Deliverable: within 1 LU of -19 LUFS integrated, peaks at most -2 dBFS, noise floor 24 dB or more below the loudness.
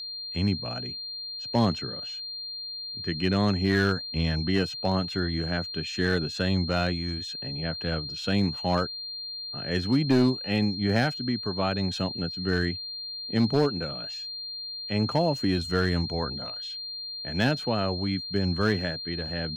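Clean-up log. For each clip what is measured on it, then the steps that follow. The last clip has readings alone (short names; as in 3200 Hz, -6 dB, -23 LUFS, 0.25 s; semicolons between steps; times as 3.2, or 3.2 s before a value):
clipped 0.4%; flat tops at -15.0 dBFS; steady tone 4200 Hz; tone level -34 dBFS; loudness -27.5 LUFS; peak -15.0 dBFS; loudness target -19.0 LUFS
-> clip repair -15 dBFS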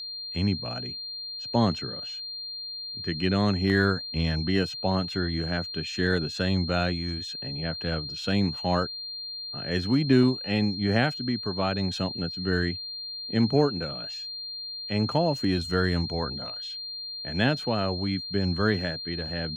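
clipped 0.0%; steady tone 4200 Hz; tone level -34 dBFS
-> notch 4200 Hz, Q 30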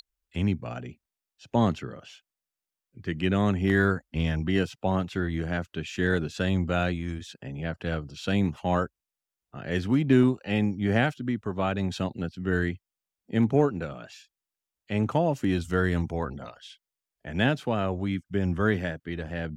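steady tone none; loudness -27.5 LUFS; peak -9.5 dBFS; loudness target -19.0 LUFS
-> gain +8.5 dB; limiter -2 dBFS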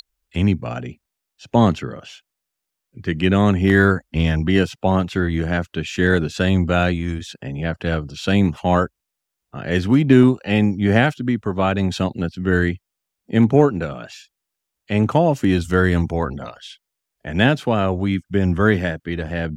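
loudness -19.0 LUFS; peak -2.0 dBFS; noise floor -81 dBFS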